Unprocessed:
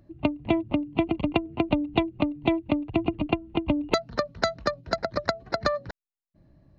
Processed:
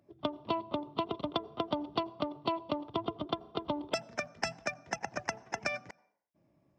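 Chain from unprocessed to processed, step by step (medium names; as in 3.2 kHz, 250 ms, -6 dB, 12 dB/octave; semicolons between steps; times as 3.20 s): high-pass 150 Hz 12 dB/octave; formant shift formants +4 st; on a send: reverberation, pre-delay 76 ms, DRR 22.5 dB; on the sum: trim -9 dB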